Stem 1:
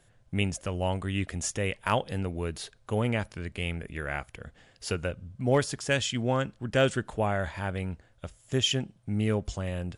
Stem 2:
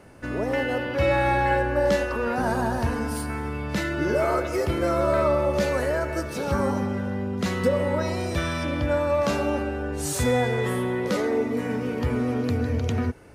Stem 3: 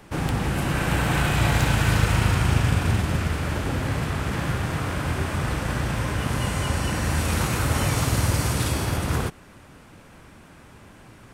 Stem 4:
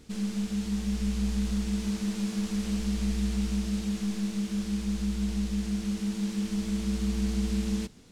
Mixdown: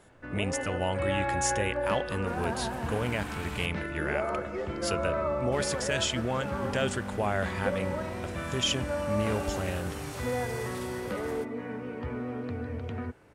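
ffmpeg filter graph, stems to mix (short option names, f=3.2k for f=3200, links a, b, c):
-filter_complex "[0:a]alimiter=limit=-20.5dB:level=0:latency=1,volume=2.5dB[a];[1:a]lowpass=2.3k,volume=-6.5dB[b];[2:a]adelay=2150,volume=-15.5dB,asplit=3[c][d][e];[c]atrim=end=3.66,asetpts=PTS-STARTPTS,afade=t=out:st=3.656:d=0.004:c=hsin[f];[d]atrim=start=3.66:end=5.52,asetpts=PTS-STARTPTS,volume=0[g];[e]atrim=start=5.52,asetpts=PTS-STARTPTS,afade=t=in:d=0.004:c=hsin[h];[f][g][h]concat=n=3:v=0:a=1[i];[3:a]tiltshelf=f=970:g=6,adelay=1950,volume=-18.5dB[j];[a][b][i][j]amix=inputs=4:normalize=0,lowshelf=f=450:g=-5"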